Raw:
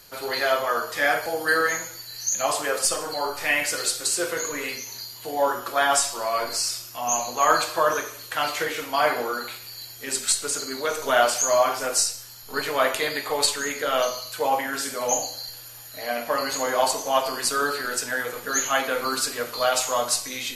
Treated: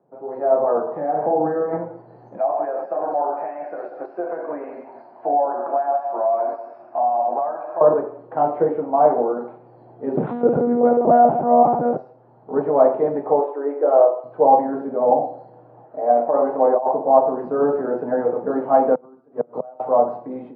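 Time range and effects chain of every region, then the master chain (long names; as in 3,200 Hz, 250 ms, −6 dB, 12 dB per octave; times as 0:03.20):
0:00.82–0:01.73: downward compressor, threshold −27 dBFS + double-tracking delay 45 ms −6 dB + flutter between parallel walls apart 7.9 metres, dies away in 0.3 s
0:02.37–0:07.81: loudspeaker in its box 380–6,100 Hz, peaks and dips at 450 Hz −9 dB, 670 Hz +7 dB, 1,600 Hz +9 dB, 2,400 Hz +8 dB, 3,400 Hz −4 dB, 5,300 Hz +8 dB + downward compressor 10 to 1, threshold −28 dBFS + single-tap delay 187 ms −12 dB
0:10.17–0:11.97: one-pitch LPC vocoder at 8 kHz 240 Hz + envelope flattener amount 50%
0:13.39–0:14.24: linear-phase brick-wall band-pass 280–3,900 Hz + high-frequency loss of the air 140 metres
0:15.84–0:16.94: bass and treble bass −12 dB, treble −15 dB + compressor whose output falls as the input rises −25 dBFS, ratio −0.5
0:18.94–0:19.80: low-shelf EQ 87 Hz +9 dB + gate with flip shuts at −17 dBFS, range −28 dB
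whole clip: elliptic band-pass filter 150–800 Hz, stop band 80 dB; automatic gain control gain up to 15.5 dB; level −1 dB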